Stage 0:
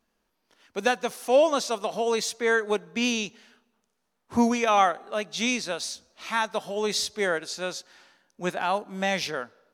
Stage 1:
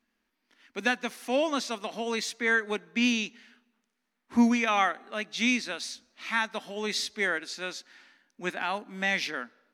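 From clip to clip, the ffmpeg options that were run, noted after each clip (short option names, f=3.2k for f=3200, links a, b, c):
-af "equalizer=f=125:t=o:w=1:g=-12,equalizer=f=250:t=o:w=1:g=12,equalizer=f=500:t=o:w=1:g=-4,equalizer=f=2k:t=o:w=1:g=10,equalizer=f=4k:t=o:w=1:g=3,volume=-7dB"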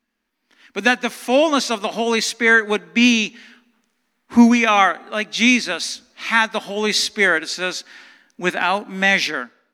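-af "dynaudnorm=f=140:g=7:m=11dB,volume=1.5dB"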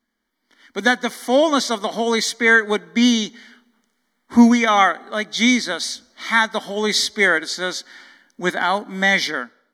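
-af "asuperstop=centerf=2600:order=20:qfactor=4.6"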